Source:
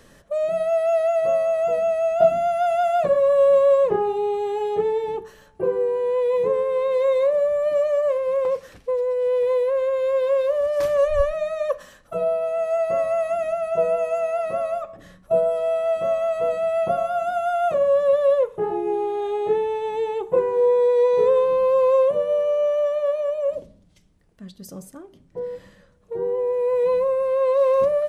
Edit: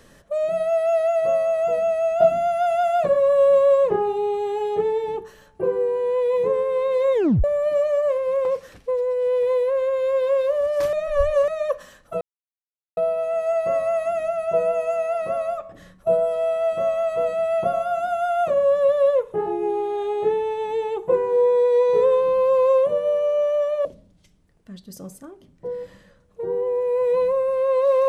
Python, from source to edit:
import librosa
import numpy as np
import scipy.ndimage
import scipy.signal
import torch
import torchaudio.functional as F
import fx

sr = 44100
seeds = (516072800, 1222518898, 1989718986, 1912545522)

y = fx.edit(x, sr, fx.tape_stop(start_s=7.14, length_s=0.3),
    fx.reverse_span(start_s=10.93, length_s=0.55),
    fx.insert_silence(at_s=12.21, length_s=0.76),
    fx.cut(start_s=23.09, length_s=0.48), tone=tone)